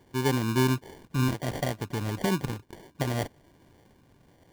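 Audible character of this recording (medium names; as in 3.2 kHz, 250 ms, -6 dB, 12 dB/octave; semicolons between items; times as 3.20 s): phasing stages 12, 0.67 Hz, lowest notch 580–3100 Hz; aliases and images of a low sample rate 1.3 kHz, jitter 0%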